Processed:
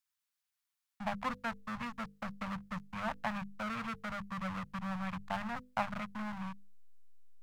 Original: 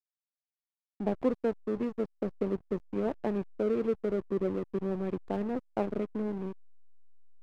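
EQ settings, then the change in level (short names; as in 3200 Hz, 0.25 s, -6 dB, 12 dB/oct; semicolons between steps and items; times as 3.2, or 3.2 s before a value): Chebyshev band-stop 130–1100 Hz, order 2; low shelf 170 Hz -8.5 dB; notches 50/100/150/200/250/300/350/400/450/500 Hz; +9.0 dB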